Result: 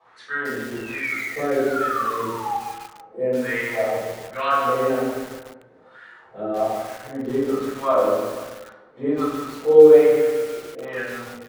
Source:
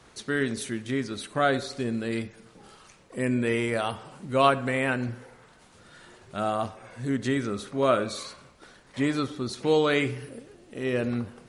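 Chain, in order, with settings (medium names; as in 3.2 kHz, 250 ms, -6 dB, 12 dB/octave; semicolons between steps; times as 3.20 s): painted sound fall, 0.75–2.55 s, 790–2800 Hz -31 dBFS; wah-wah 1.2 Hz 380–1700 Hz, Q 2.9; delay 482 ms -20.5 dB; simulated room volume 200 m³, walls mixed, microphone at 6 m; bit-crushed delay 147 ms, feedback 55%, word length 5-bit, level -6 dB; trim -4.5 dB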